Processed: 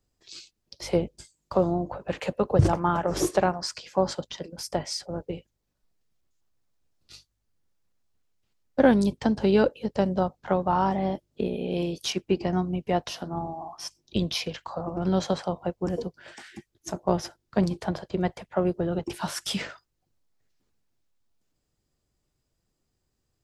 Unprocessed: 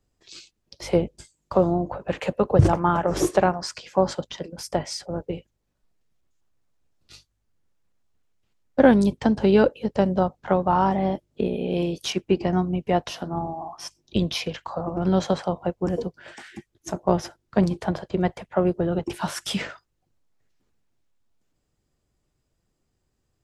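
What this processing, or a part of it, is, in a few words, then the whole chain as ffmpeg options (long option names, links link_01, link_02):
presence and air boost: -af "equalizer=frequency=4700:width_type=o:width=0.77:gain=3.5,highshelf=frequency=9600:gain=5.5,volume=-3.5dB"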